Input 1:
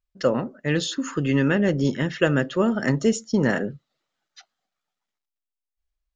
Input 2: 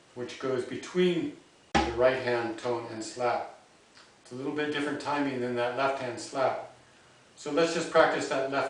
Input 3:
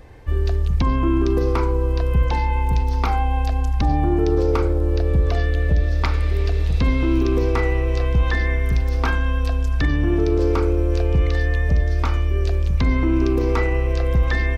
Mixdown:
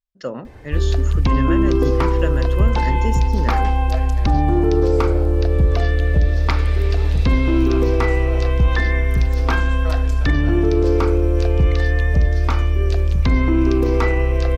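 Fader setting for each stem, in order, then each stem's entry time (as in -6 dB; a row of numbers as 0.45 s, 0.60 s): -6.5 dB, -11.0 dB, +2.5 dB; 0.00 s, 1.90 s, 0.45 s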